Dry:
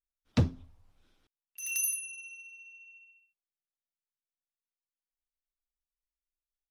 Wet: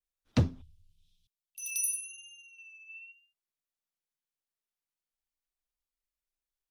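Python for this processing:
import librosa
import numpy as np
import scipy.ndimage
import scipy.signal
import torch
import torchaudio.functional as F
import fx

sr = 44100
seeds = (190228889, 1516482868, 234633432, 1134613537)

y = fx.ellip_bandstop(x, sr, low_hz=160.0, high_hz=3100.0, order=3, stop_db=40, at=(0.62, 2.59))
y = fx.vibrato(y, sr, rate_hz=0.98, depth_cents=53.0)
y = fx.spec_box(y, sr, start_s=2.9, length_s=0.22, low_hz=580.0, high_hz=5000.0, gain_db=8)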